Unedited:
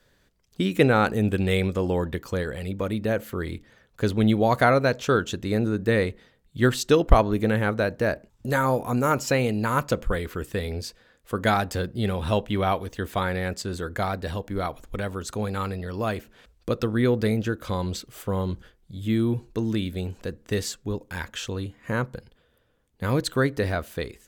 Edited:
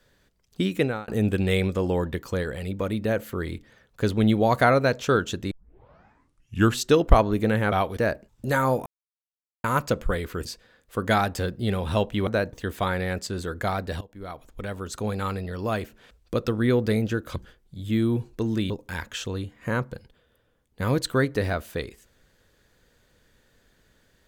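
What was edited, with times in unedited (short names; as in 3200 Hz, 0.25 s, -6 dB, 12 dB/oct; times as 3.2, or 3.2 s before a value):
0.63–1.08 fade out
5.51 tape start 1.29 s
7.72–7.98 swap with 12.63–12.88
8.87–9.65 mute
10.46–10.81 cut
14.36–15.4 fade in, from -18.5 dB
17.71–18.53 cut
19.87–20.92 cut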